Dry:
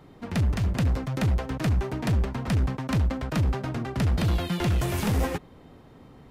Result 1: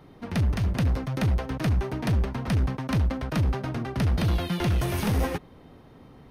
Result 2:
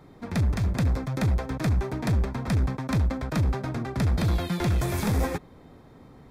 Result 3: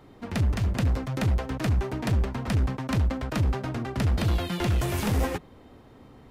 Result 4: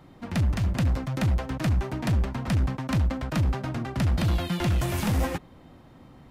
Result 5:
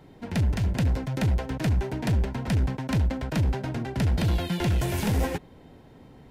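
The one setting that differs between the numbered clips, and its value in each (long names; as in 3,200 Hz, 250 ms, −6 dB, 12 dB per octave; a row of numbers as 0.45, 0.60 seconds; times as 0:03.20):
notch filter, centre frequency: 7,400, 2,900, 160, 430, 1,200 Hertz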